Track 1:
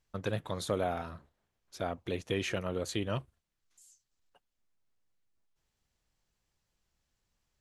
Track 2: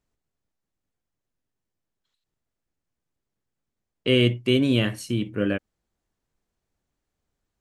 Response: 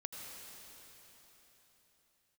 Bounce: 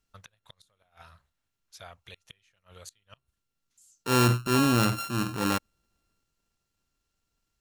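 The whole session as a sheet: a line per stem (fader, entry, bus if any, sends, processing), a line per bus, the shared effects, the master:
+1.0 dB, 0.00 s, no send, amplifier tone stack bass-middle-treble 10-0-10; inverted gate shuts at -33 dBFS, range -29 dB
-2.0 dB, 0.00 s, no send, sorted samples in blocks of 32 samples; transient shaper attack -7 dB, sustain +7 dB; band-stop 2.2 kHz, Q 20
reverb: none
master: none

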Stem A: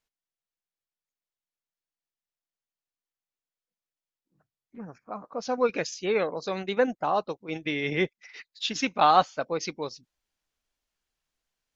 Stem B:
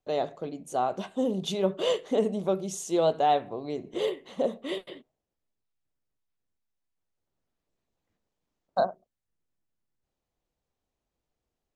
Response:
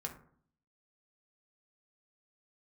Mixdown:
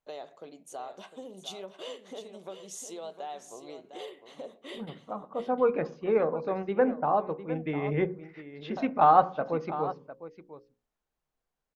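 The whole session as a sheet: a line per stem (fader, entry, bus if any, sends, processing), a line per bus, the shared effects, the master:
-1.5 dB, 0.00 s, send -7 dB, echo send -11.5 dB, low-pass 1.2 kHz 12 dB/octave; hum notches 60/120/180/240/300/360/420/480/540 Hz
-4.0 dB, 0.00 s, no send, echo send -10 dB, compression 6:1, threshold -30 dBFS, peak gain reduction 11 dB; high-pass 660 Hz 6 dB/octave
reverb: on, RT60 0.55 s, pre-delay 3 ms
echo: delay 705 ms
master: none

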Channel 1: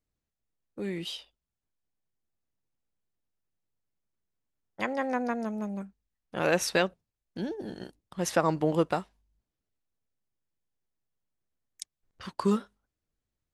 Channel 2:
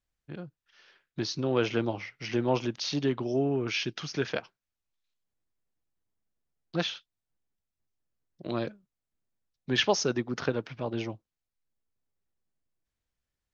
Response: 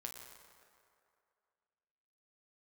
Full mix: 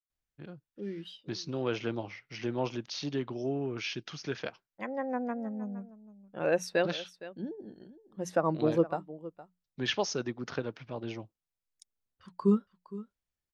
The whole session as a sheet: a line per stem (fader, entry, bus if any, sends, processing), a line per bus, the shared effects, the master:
-3.5 dB, 0.00 s, no send, echo send -16.5 dB, hum notches 60/120/180 Hz; spectral contrast expander 1.5:1
-5.5 dB, 0.10 s, no send, no echo send, none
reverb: none
echo: delay 463 ms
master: none

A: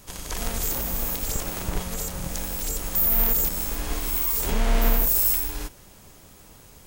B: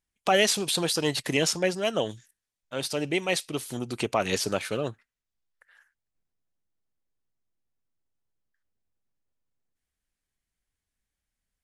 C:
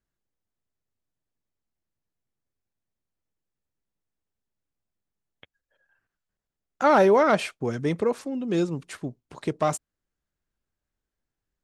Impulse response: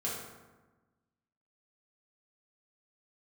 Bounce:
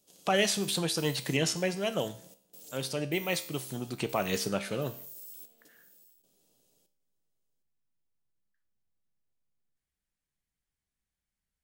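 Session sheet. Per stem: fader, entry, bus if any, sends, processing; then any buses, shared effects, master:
-13.0 dB, 0.00 s, bus A, no send, echo send -21 dB, high-pass 280 Hz 12 dB/octave; high-order bell 1.4 kHz -12.5 dB; trance gate "xxxx.xx." 77 bpm -60 dB
+1.0 dB, 0.00 s, no bus, no send, no echo send, none
mute
bus A: 0.0 dB, peak limiter -32 dBFS, peak gain reduction 9 dB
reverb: none
echo: delay 763 ms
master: peaking EQ 160 Hz +6.5 dB 0.6 oct; feedback comb 66 Hz, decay 0.55 s, harmonics all, mix 60%

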